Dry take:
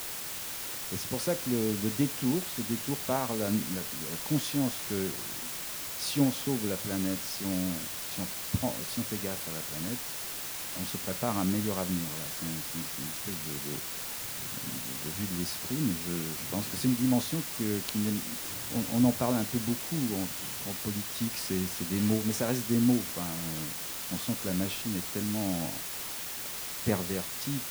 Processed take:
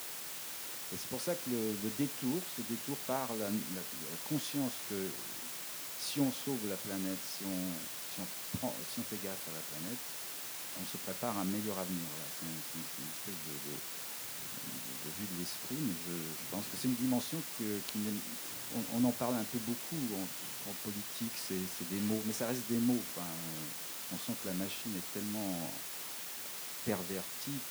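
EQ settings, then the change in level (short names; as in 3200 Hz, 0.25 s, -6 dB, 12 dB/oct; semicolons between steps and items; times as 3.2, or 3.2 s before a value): Bessel high-pass 170 Hz, order 2; -5.5 dB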